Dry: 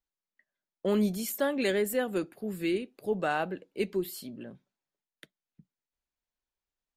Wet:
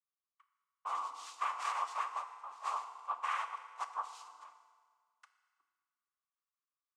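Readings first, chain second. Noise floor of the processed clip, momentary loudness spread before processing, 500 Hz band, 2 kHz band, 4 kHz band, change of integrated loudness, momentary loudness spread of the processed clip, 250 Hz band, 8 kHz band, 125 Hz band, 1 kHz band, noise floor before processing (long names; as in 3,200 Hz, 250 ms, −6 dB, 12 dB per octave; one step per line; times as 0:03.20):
below −85 dBFS, 11 LU, −27.0 dB, −9.0 dB, −9.5 dB, −8.5 dB, 11 LU, below −40 dB, −11.0 dB, below −40 dB, +2.5 dB, below −85 dBFS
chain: cochlear-implant simulation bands 4
four-pole ladder high-pass 1,100 Hz, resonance 85%
feedback delay network reverb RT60 1.8 s, low-frequency decay 0.9×, high-frequency decay 0.85×, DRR 7.5 dB
level +1 dB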